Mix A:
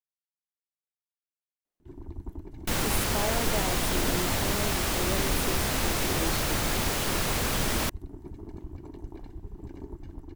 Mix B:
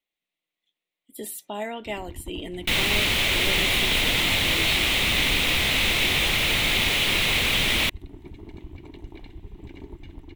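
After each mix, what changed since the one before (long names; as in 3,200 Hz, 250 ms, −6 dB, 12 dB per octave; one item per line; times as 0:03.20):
speech: entry −1.65 s
master: add flat-topped bell 2,800 Hz +14 dB 1.2 octaves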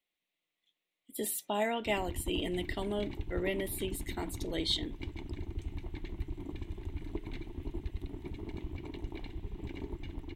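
second sound: muted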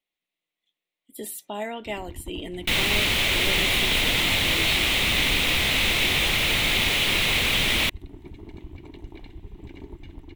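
second sound: unmuted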